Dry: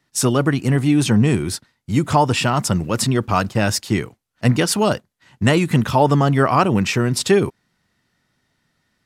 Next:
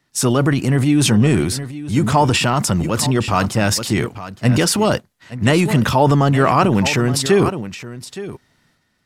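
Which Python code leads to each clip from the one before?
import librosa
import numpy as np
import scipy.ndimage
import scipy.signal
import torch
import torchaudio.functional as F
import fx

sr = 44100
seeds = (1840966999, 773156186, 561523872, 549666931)

y = x + 10.0 ** (-15.0 / 20.0) * np.pad(x, (int(869 * sr / 1000.0), 0))[:len(x)]
y = fx.transient(y, sr, attack_db=-1, sustain_db=7)
y = y * librosa.db_to_amplitude(1.0)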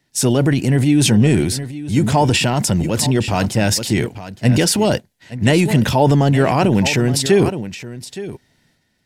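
y = fx.peak_eq(x, sr, hz=1200.0, db=-13.0, octaves=0.42)
y = y * librosa.db_to_amplitude(1.0)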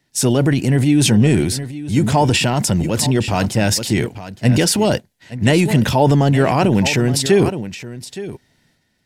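y = x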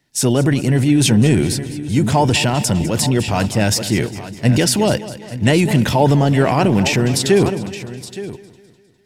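y = fx.echo_feedback(x, sr, ms=203, feedback_pct=52, wet_db=-15.5)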